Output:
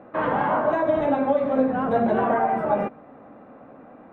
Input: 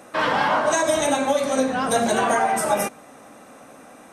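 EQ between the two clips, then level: LPF 1000 Hz 6 dB/oct; air absorption 490 m; +2.5 dB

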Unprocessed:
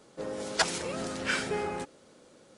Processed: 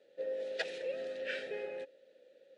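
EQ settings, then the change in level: vowel filter e; bell 3800 Hz +8.5 dB 0.45 oct; +2.0 dB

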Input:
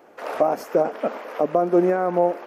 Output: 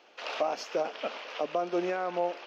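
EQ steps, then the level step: air absorption 230 m; tilt +4 dB/oct; band shelf 4200 Hz +12.5 dB; -6.5 dB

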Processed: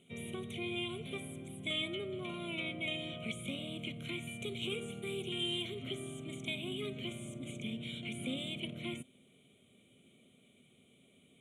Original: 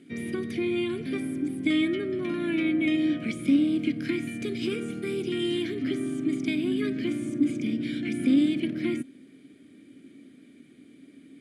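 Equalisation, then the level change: Butterworth band-stop 4900 Hz, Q 1.6; bell 3100 Hz +8 dB 1.2 oct; fixed phaser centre 710 Hz, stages 4; -2.5 dB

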